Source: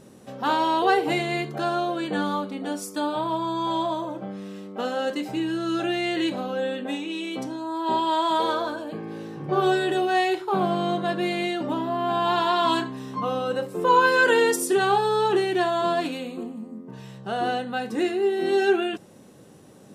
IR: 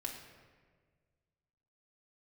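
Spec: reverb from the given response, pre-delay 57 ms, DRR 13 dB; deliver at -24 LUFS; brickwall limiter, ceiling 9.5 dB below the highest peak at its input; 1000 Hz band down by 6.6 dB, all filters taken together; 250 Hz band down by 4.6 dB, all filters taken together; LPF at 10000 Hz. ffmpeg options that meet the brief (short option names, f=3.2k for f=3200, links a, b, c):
-filter_complex "[0:a]lowpass=10k,equalizer=f=250:t=o:g=-6.5,equalizer=f=1k:t=o:g=-8,alimiter=limit=-21.5dB:level=0:latency=1,asplit=2[a][b];[1:a]atrim=start_sample=2205,adelay=57[c];[b][c]afir=irnorm=-1:irlink=0,volume=-12.5dB[d];[a][d]amix=inputs=2:normalize=0,volume=7dB"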